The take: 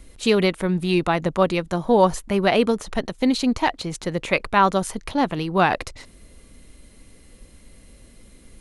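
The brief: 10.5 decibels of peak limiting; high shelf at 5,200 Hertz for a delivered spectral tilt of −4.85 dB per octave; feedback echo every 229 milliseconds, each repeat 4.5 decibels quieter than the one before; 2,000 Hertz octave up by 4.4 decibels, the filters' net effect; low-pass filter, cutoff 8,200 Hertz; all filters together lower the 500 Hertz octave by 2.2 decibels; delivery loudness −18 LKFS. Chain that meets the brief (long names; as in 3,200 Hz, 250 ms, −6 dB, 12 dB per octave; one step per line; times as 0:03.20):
low-pass filter 8,200 Hz
parametric band 500 Hz −3 dB
parametric band 2,000 Hz +5 dB
high-shelf EQ 5,200 Hz +4 dB
brickwall limiter −12.5 dBFS
repeating echo 229 ms, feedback 60%, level −4.5 dB
level +5 dB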